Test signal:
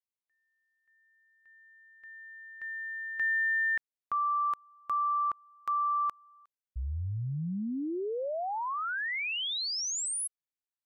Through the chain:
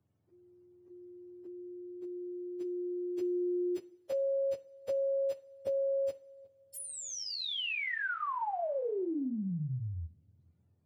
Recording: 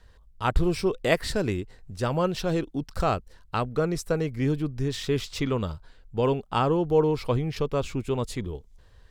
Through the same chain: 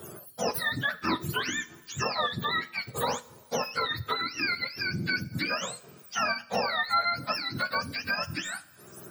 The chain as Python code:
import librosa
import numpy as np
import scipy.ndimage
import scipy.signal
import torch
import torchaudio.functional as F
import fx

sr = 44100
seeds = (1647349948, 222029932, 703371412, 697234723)

y = fx.octave_mirror(x, sr, pivot_hz=800.0)
y = fx.bass_treble(y, sr, bass_db=-9, treble_db=-1)
y = fx.rev_double_slope(y, sr, seeds[0], early_s=0.38, late_s=1.6, knee_db=-18, drr_db=13.5)
y = fx.band_squash(y, sr, depth_pct=70)